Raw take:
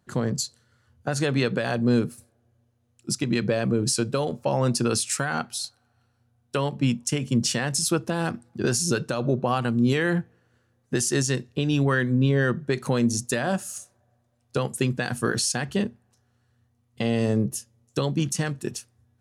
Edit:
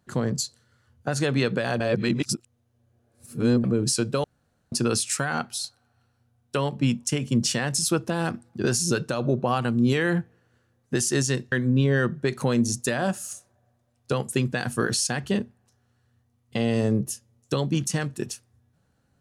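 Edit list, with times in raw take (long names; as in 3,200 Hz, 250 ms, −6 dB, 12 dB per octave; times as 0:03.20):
0:01.80–0:03.64: reverse
0:04.24–0:04.72: fill with room tone
0:11.52–0:11.97: remove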